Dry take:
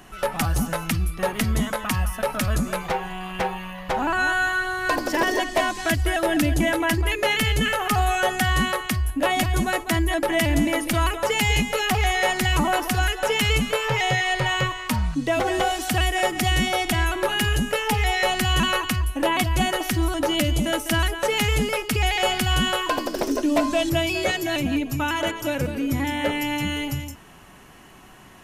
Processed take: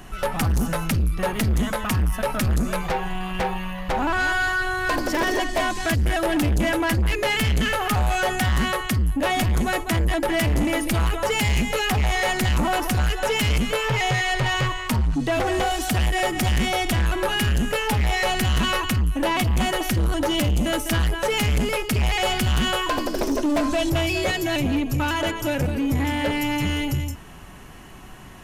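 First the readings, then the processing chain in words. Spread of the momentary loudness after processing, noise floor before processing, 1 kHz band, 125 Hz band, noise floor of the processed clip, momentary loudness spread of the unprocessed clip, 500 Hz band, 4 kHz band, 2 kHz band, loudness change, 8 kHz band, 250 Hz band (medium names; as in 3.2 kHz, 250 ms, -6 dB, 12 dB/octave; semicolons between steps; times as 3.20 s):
3 LU, -40 dBFS, -1.0 dB, +2.5 dB, -35 dBFS, 5 LU, -0.5 dB, -1.5 dB, -1.0 dB, 0.0 dB, -1.0 dB, +0.5 dB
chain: bass shelf 120 Hz +10 dB; saturation -20 dBFS, distortion -9 dB; trim +2.5 dB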